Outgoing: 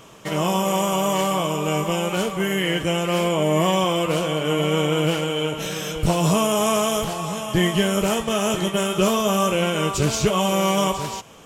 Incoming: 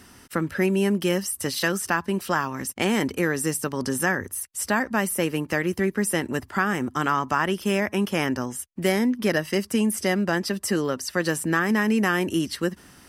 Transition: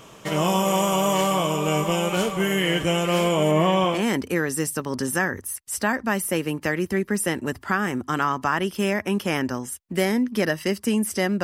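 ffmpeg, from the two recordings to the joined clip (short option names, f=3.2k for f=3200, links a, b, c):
-filter_complex "[0:a]asettb=1/sr,asplit=3[a][b][c];[a]atrim=end=3.514[d];[b]atrim=start=3.51:end=4.04,asetpts=PTS-STARTPTS,afade=t=in:d=0.004:c=qsin,afade=t=out:st=0.526:d=0.004:c=qsin,acrossover=split=3400[e][f];[f]acompressor=threshold=-44dB:ratio=4:attack=1:release=60[g];[e][g]amix=inputs=2:normalize=0[h];[c]atrim=start=4.036[i];[d][h]acrossfade=d=0.004:c1=hsin:c2=qsin[j];[j][i]acrossfade=d=0.004:c1=qsin:c2=hsin,apad=whole_dur=11.43,atrim=end=11.43,atrim=end=4.04,asetpts=PTS-STARTPTS[k];[1:a]atrim=start=2.75:end=10.3,asetpts=PTS-STARTPTS[l];[k][l]acrossfade=d=0.16:c1=tri:c2=tri"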